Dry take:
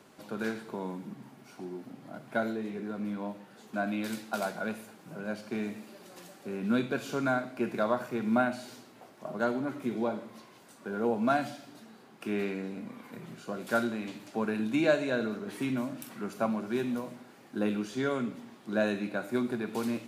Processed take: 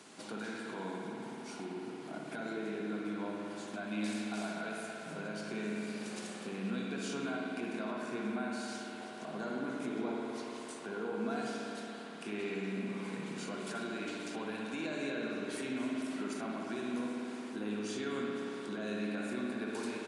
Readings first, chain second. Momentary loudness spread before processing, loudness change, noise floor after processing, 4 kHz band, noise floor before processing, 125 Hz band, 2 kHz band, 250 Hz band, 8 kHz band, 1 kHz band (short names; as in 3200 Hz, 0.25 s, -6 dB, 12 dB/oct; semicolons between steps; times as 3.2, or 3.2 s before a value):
17 LU, -6.5 dB, -46 dBFS, -0.5 dB, -55 dBFS, -6.0 dB, -5.0 dB, -5.0 dB, +1.0 dB, -7.0 dB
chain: HPF 150 Hz 12 dB/oct; high shelf 2800 Hz +9.5 dB; notch 570 Hz, Q 12; compressor 2:1, threshold -43 dBFS, peak gain reduction 13 dB; limiter -32.5 dBFS, peak gain reduction 12 dB; spring tank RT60 3.7 s, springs 57 ms, chirp 55 ms, DRR -2 dB; downsampling 22050 Hz